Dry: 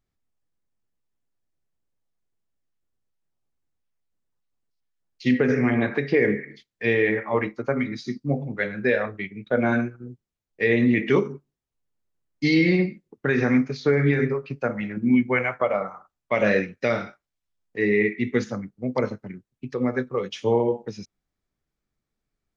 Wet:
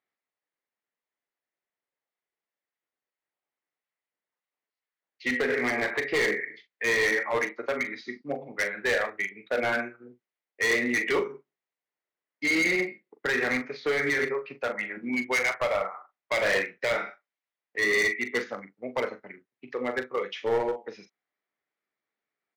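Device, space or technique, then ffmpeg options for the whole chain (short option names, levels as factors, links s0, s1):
megaphone: -filter_complex "[0:a]highpass=490,lowpass=3200,equalizer=f=2000:t=o:w=0.34:g=7,asoftclip=type=hard:threshold=0.0841,asplit=2[s0][s1];[s1]adelay=41,volume=0.282[s2];[s0][s2]amix=inputs=2:normalize=0"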